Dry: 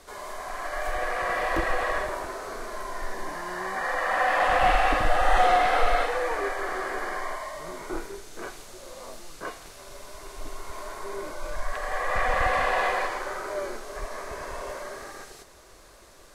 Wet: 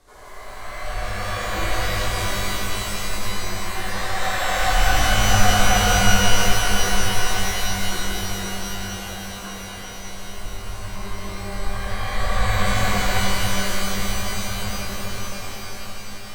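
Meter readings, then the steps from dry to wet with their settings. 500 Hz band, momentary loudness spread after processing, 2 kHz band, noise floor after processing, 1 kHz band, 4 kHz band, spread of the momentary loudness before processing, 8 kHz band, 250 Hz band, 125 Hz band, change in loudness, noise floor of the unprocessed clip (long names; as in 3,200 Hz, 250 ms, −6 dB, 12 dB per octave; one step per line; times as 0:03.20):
−0.5 dB, 17 LU, +4.0 dB, −34 dBFS, +0.5 dB, +14.5 dB, 20 LU, +17.0 dB, +11.0 dB, +17.0 dB, +4.5 dB, −51 dBFS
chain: low-shelf EQ 160 Hz +9.5 dB
on a send: tape delay 349 ms, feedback 88%, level −13.5 dB, low-pass 2,700 Hz
on the sum: reverb with rising layers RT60 3.9 s, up +12 semitones, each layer −2 dB, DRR −6.5 dB
level −9 dB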